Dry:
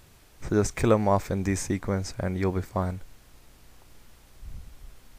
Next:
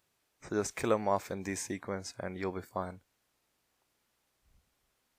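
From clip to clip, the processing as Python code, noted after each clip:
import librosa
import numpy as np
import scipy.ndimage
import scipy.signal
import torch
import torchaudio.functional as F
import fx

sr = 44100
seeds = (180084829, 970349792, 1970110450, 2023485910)

y = fx.noise_reduce_blind(x, sr, reduce_db=13)
y = fx.highpass(y, sr, hz=390.0, slope=6)
y = y * librosa.db_to_amplitude(-5.0)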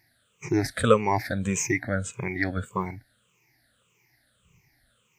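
y = fx.spec_ripple(x, sr, per_octave=0.75, drift_hz=-1.7, depth_db=22)
y = fx.graphic_eq_10(y, sr, hz=(125, 1000, 2000), db=(12, -5, 9))
y = y * librosa.db_to_amplitude(2.5)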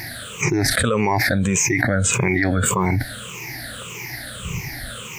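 y = fx.env_flatten(x, sr, amount_pct=100)
y = y * librosa.db_to_amplitude(-5.5)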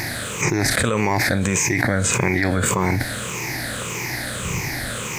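y = fx.bin_compress(x, sr, power=0.6)
y = y * librosa.db_to_amplitude(-3.5)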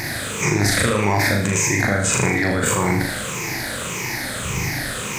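y = fx.room_flutter(x, sr, wall_m=6.7, rt60_s=0.61)
y = y * librosa.db_to_amplitude(-1.0)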